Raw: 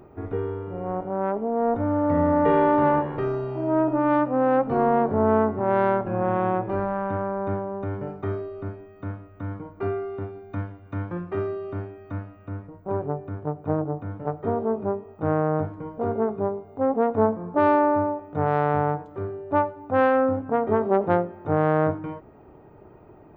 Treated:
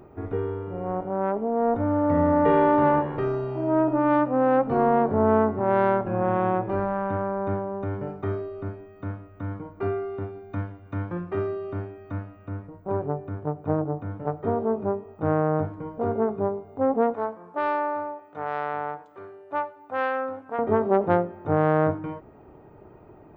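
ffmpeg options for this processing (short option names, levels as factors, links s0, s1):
-filter_complex "[0:a]asettb=1/sr,asplit=3[s0][s1][s2];[s0]atrim=end=17.144[s3];[s1]atrim=start=17.14:end=20.59,asetpts=PTS-STARTPTS,afade=t=in:d=0.004:c=qsin,afade=t=out:st=3.446:d=0.004:c=qsin,highpass=f=1300:p=1[s4];[s2]atrim=start=20.586[s5];[s3][s4]acrossfade=d=0.004:c1=hsin:c2=qsin[s6];[s6][s5]acrossfade=d=0.004:c1=qsin:c2=hsin"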